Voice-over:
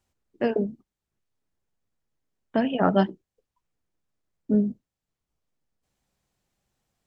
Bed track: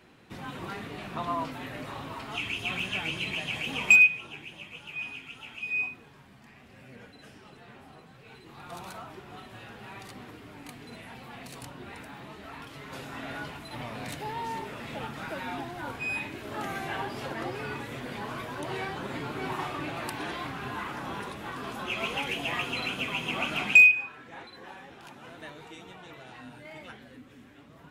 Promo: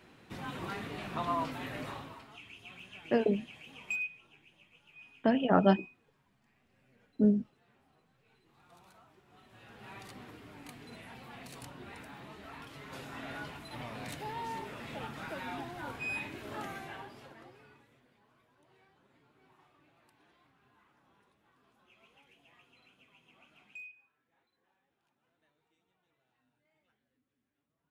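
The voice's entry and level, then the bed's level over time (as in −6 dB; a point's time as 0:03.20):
2.70 s, −3.5 dB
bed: 0:01.88 −1.5 dB
0:02.39 −18.5 dB
0:09.24 −18.5 dB
0:09.90 −4.5 dB
0:16.53 −4.5 dB
0:18.20 −32.5 dB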